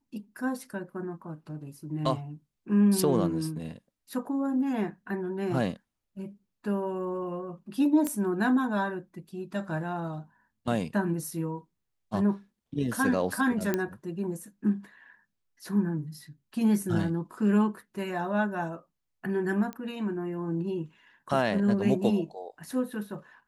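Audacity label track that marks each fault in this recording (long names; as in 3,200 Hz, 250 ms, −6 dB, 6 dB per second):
8.070000	8.070000	click −17 dBFS
13.740000	13.740000	click −13 dBFS
19.730000	19.730000	click −23 dBFS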